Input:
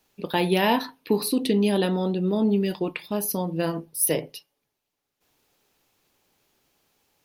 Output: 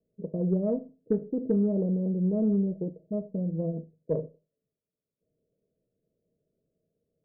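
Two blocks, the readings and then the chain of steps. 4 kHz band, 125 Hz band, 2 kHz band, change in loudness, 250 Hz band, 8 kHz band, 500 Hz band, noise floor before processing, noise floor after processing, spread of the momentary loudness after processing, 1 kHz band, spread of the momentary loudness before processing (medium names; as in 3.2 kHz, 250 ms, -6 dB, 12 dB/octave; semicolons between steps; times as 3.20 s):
under -40 dB, -1.0 dB, under -35 dB, -5.0 dB, -3.0 dB, under -40 dB, -5.5 dB, -82 dBFS, under -85 dBFS, 10 LU, under -20 dB, 7 LU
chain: rippled Chebyshev low-pass 660 Hz, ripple 9 dB; Chebyshev shaper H 4 -32 dB, 5 -43 dB, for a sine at -14 dBFS; Schroeder reverb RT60 0.31 s, combs from 26 ms, DRR 16 dB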